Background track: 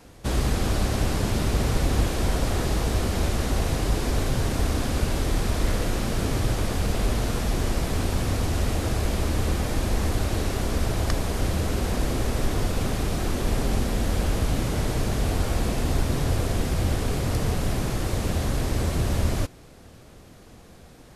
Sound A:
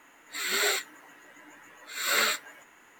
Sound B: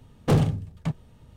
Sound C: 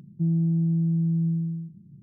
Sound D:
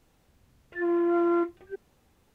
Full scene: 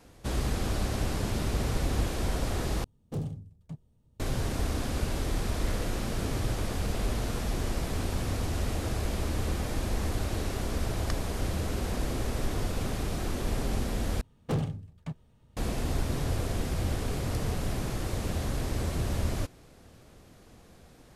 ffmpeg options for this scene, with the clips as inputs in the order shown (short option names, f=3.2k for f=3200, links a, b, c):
-filter_complex "[2:a]asplit=2[a][b];[0:a]volume=-6dB[c];[a]equalizer=f=1.8k:w=0.47:g=-11.5[d];[c]asplit=3[e][f][g];[e]atrim=end=2.844[h];[d]atrim=end=1.36,asetpts=PTS-STARTPTS,volume=-13dB[i];[f]atrim=start=4.196:end=14.214[j];[b]atrim=end=1.36,asetpts=PTS-STARTPTS,volume=-9.5dB[k];[g]atrim=start=15.566[l];[h][i]acrossfade=d=0.004:c1=hsin:c2=hsin[m];[m][j]acrossfade=d=0.004:c1=hsin:c2=hsin[n];[n][k]acrossfade=d=0.004:c1=hsin:c2=hsin[o];[o][l]acrossfade=d=0.004:c1=hsin:c2=hsin"